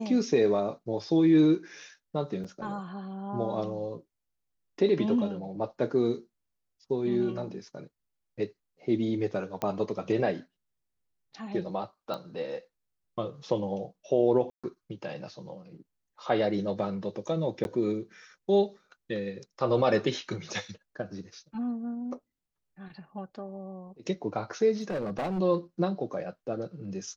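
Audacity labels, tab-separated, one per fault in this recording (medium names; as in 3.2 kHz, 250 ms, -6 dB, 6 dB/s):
2.440000	2.450000	dropout 5.6 ms
9.620000	9.620000	pop -17 dBFS
12.140000	12.140000	pop -23 dBFS
14.500000	14.640000	dropout 136 ms
17.640000	17.650000	dropout 11 ms
24.780000	25.400000	clipped -28 dBFS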